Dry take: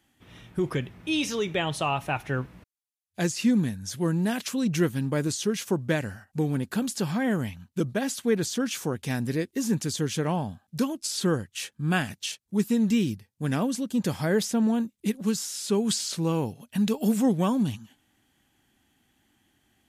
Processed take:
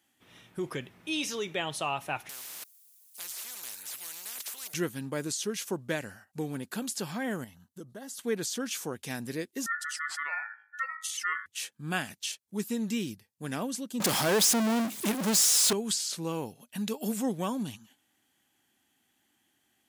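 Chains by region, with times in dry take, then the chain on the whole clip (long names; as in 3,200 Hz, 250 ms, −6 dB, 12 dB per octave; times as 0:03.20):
0:02.29–0:04.74: first difference + every bin compressed towards the loudest bin 10 to 1
0:07.44–0:08.19: parametric band 2,700 Hz −5.5 dB 1.8 octaves + downward compressor 2 to 1, threshold −40 dBFS + Butterworth band-reject 2,400 Hz, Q 6.3
0:09.66–0:11.46: expanding power law on the bin magnitudes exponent 1.7 + hum removal 52.71 Hz, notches 16 + ring modulation 1,600 Hz
0:14.00–0:15.73: high-pass filter 170 Hz + power curve on the samples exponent 0.35
whole clip: high-pass filter 300 Hz 6 dB per octave; high-shelf EQ 5,500 Hz +5.5 dB; level −4.5 dB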